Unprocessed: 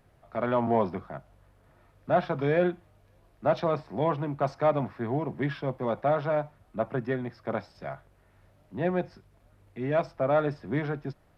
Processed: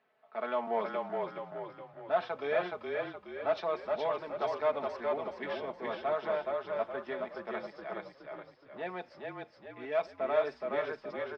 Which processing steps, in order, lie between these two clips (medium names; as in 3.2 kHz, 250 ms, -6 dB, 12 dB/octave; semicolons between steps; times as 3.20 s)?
low-pass 4 kHz 12 dB/octave; level-controlled noise filter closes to 2.8 kHz, open at -25.5 dBFS; high-pass 450 Hz 12 dB/octave; treble shelf 3.1 kHz +10.5 dB; comb 4.6 ms, depth 63%; frequency-shifting echo 420 ms, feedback 46%, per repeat -30 Hz, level -3 dB; trim -7.5 dB